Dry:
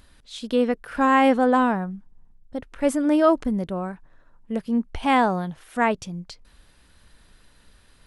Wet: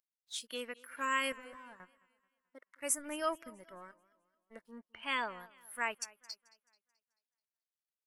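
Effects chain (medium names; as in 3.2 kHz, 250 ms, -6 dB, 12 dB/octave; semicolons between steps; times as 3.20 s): differentiator; 1.32–1.80 s: valve stage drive 49 dB, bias 0.5; Butterworth band-stop 780 Hz, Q 5.7; crossover distortion -58.5 dBFS; 2.98–3.50 s: bass shelf 97 Hz +9 dB; spectral noise reduction 20 dB; 4.80–5.40 s: low-pass 4.1 kHz 12 dB/octave; modulated delay 217 ms, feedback 43%, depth 101 cents, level -22 dB; trim +3 dB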